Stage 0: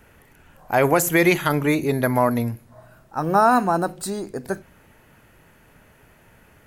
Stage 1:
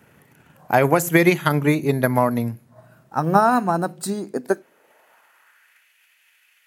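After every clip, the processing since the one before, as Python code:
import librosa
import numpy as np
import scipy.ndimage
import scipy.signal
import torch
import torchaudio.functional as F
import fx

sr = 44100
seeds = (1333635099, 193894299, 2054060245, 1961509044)

y = fx.transient(x, sr, attack_db=6, sustain_db=-3)
y = fx.filter_sweep_highpass(y, sr, from_hz=140.0, to_hz=2500.0, start_s=4.07, end_s=5.89, q=1.8)
y = F.gain(torch.from_numpy(y), -2.0).numpy()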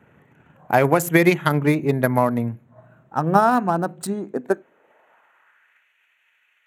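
y = fx.wiener(x, sr, points=9)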